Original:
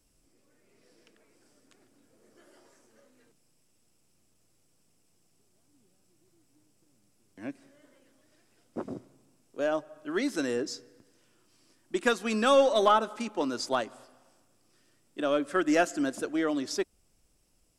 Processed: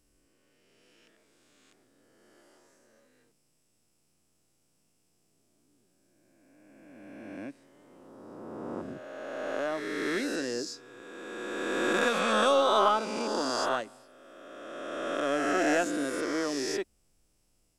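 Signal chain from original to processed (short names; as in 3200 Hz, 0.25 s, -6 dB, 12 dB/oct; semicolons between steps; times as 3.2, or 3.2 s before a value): spectral swells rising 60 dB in 2.48 s; gain -5.5 dB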